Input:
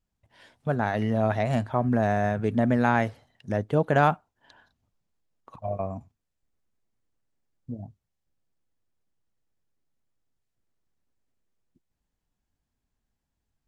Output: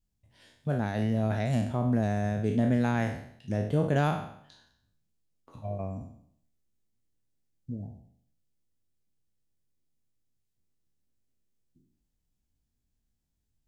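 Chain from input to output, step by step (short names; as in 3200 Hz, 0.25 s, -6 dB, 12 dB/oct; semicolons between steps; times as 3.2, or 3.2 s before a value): spectral trails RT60 0.65 s; bell 1100 Hz -11.5 dB 2.6 oct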